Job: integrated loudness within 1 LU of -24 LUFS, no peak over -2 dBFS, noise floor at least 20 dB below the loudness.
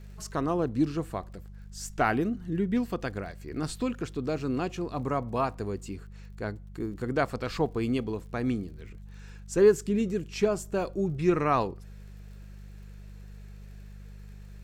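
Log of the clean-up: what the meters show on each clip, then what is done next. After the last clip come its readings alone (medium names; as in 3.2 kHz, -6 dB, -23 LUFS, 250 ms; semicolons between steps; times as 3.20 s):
tick rate 55 per s; hum 50 Hz; highest harmonic 200 Hz; hum level -42 dBFS; loudness -29.5 LUFS; peak level -9.5 dBFS; loudness target -24.0 LUFS
-> de-click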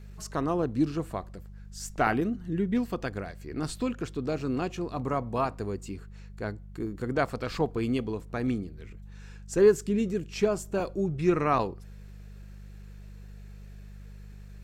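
tick rate 0.48 per s; hum 50 Hz; highest harmonic 150 Hz; hum level -43 dBFS
-> de-hum 50 Hz, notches 3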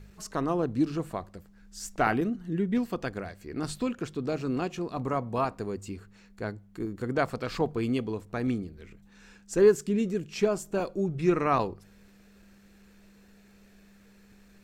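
hum not found; loudness -29.5 LUFS; peak level -9.5 dBFS; loudness target -24.0 LUFS
-> trim +5.5 dB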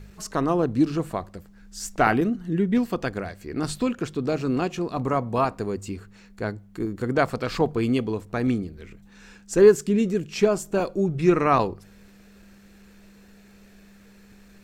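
loudness -24.0 LUFS; peak level -4.0 dBFS; noise floor -52 dBFS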